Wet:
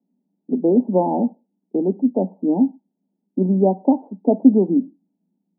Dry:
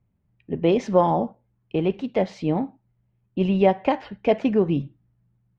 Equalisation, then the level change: Chebyshev band-pass 180–910 Hz, order 5; bell 260 Hz +14 dB 0.6 oct; -1.0 dB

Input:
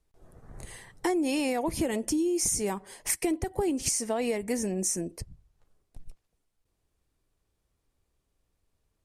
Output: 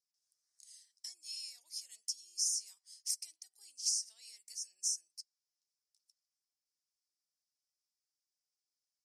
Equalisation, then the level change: ladder band-pass 5600 Hz, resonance 70%; high shelf 5500 Hz +10 dB; -3.0 dB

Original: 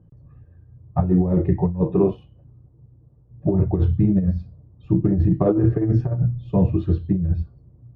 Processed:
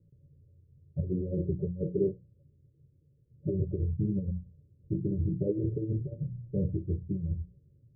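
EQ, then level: rippled Chebyshev low-pass 580 Hz, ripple 6 dB; bell 190 Hz -2.5 dB; notches 60/120/180 Hz; -7.5 dB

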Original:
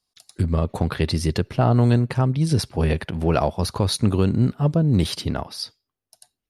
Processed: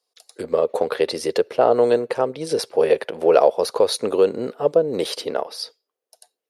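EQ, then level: resonant high-pass 480 Hz, resonance Q 4.9; 0.0 dB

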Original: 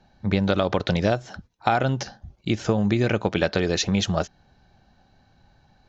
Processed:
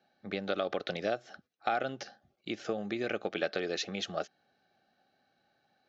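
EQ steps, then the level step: BPF 330–5200 Hz; Butterworth band-stop 960 Hz, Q 3.7; -8.5 dB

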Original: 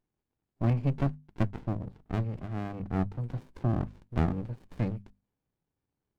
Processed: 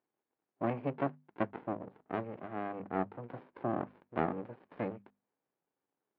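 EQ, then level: BPF 390–2500 Hz; air absorption 260 m; +4.0 dB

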